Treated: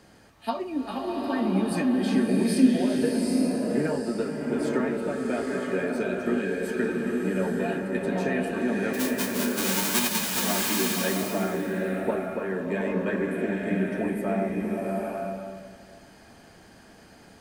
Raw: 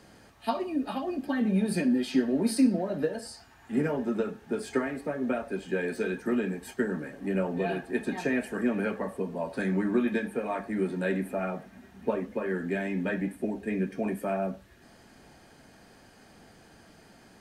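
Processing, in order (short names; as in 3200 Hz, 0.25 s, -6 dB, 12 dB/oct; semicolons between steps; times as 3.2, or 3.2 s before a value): 8.93–10.41 spectral whitening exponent 0.1; bloom reverb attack 0.85 s, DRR -1 dB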